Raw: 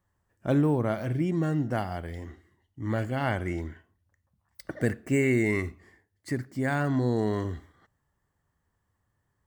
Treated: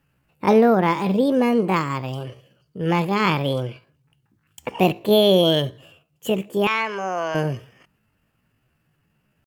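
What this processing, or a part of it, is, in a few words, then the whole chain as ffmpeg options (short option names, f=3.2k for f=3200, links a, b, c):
chipmunk voice: -filter_complex "[0:a]asettb=1/sr,asplit=3[a][b][c];[a]atrim=end=6.684[d];[b]atrim=start=6.68:end=7.36,asetpts=PTS-STARTPTS,afade=t=in:d=0.004:c=qsin,afade=t=out:st=0.676:d=0.004:c=qsin,acrossover=split=430 4600:gain=0.112 1 0.0708[e][f][g];[e][f][g]amix=inputs=3:normalize=0[h];[c]atrim=start=7.356[i];[d][h]acrossfade=d=0.004:c1=hsin:c2=qsin[j];[j][i]acrossfade=d=0.004:c1=qsin:c2=hsin,asetrate=68011,aresample=44100,atempo=0.64842,volume=8.5dB"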